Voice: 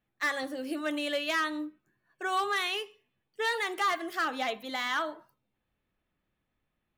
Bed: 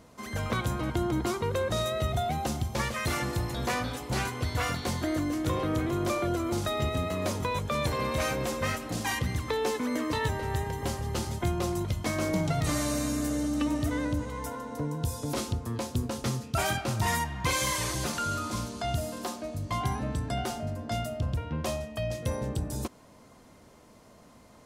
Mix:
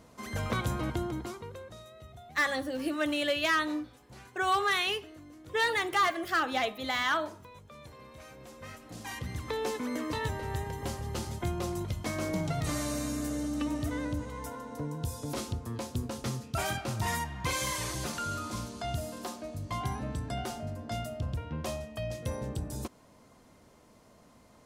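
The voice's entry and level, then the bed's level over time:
2.15 s, +2.0 dB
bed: 0.86 s -1.5 dB
1.85 s -21 dB
8.27 s -21 dB
9.54 s -4 dB

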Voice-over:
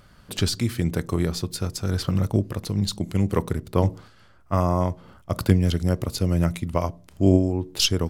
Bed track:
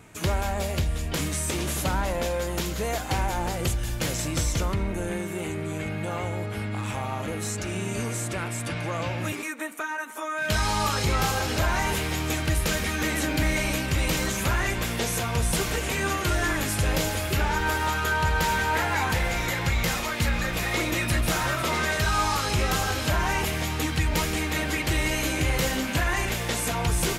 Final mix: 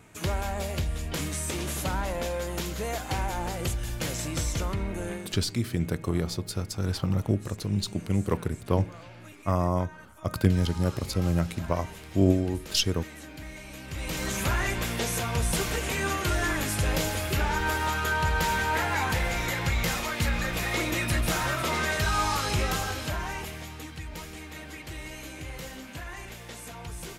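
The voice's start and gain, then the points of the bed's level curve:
4.95 s, -4.0 dB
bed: 5.10 s -3.5 dB
5.44 s -17.5 dB
13.67 s -17.5 dB
14.35 s -2 dB
22.57 s -2 dB
23.94 s -14.5 dB

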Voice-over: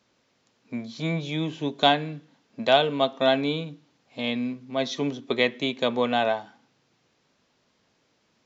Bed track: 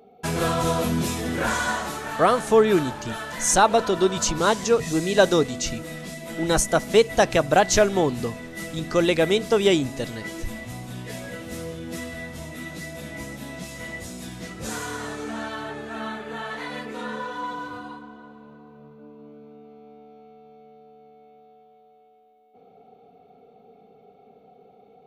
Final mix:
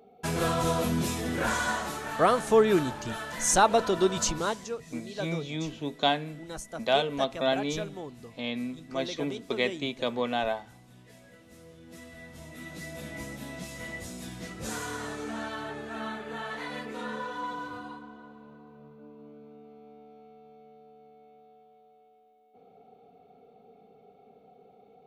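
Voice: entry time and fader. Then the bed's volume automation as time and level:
4.20 s, -5.5 dB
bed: 4.26 s -4 dB
4.84 s -19 dB
11.55 s -19 dB
12.95 s -4 dB

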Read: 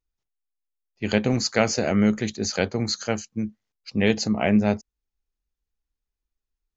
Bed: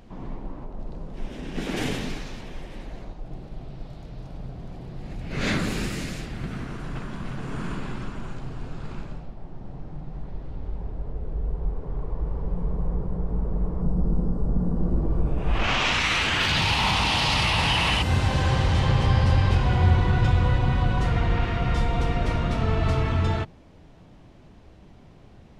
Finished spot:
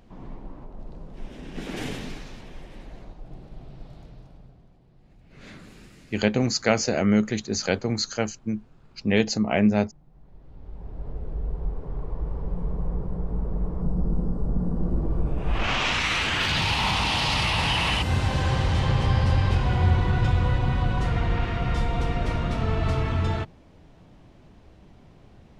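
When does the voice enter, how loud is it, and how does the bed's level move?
5.10 s, -0.5 dB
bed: 4.02 s -4.5 dB
4.80 s -20 dB
10.07 s -20 dB
11.08 s -1.5 dB

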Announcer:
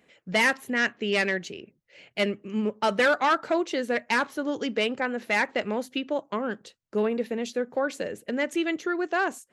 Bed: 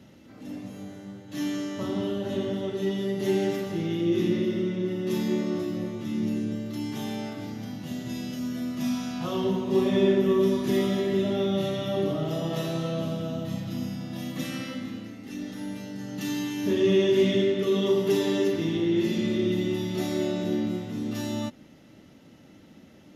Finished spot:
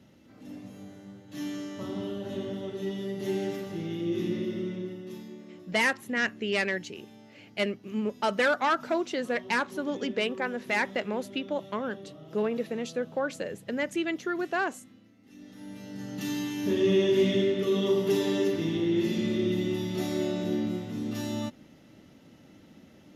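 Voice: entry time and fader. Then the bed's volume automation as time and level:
5.40 s, -3.0 dB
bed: 4.75 s -5.5 dB
5.36 s -19 dB
15.13 s -19 dB
16.01 s -2 dB

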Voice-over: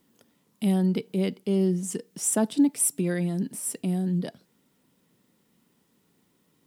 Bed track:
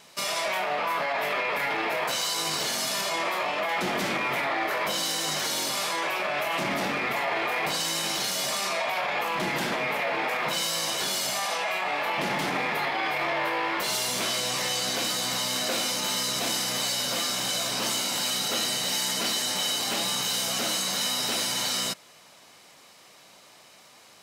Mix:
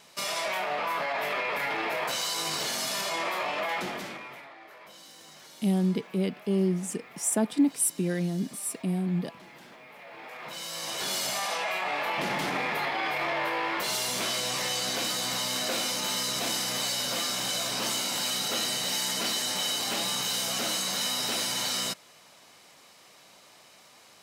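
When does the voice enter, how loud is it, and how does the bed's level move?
5.00 s, -2.0 dB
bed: 3.72 s -2.5 dB
4.56 s -22 dB
9.89 s -22 dB
11.13 s -2 dB

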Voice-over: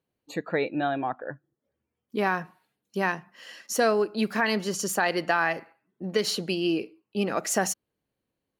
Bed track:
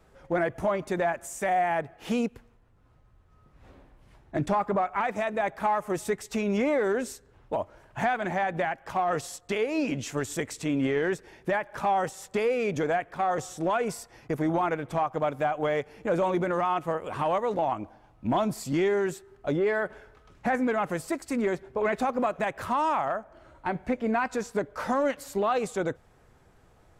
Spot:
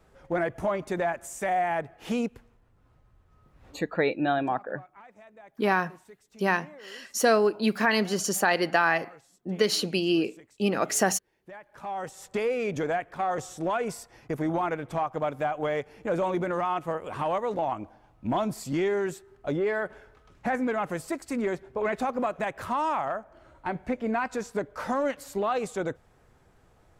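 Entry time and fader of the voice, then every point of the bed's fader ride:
3.45 s, +1.5 dB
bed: 3.68 s -1 dB
4.22 s -23 dB
11.31 s -23 dB
12.26 s -1.5 dB

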